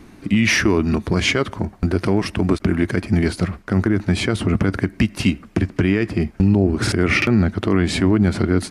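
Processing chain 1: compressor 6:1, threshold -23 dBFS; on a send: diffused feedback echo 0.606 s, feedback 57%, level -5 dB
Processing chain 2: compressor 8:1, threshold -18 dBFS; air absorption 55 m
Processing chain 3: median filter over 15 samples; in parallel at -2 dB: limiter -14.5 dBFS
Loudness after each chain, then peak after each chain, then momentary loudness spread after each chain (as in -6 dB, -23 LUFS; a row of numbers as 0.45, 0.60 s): -26.5, -24.5, -16.5 LUFS; -8.5, -7.5, -4.0 dBFS; 3, 4, 5 LU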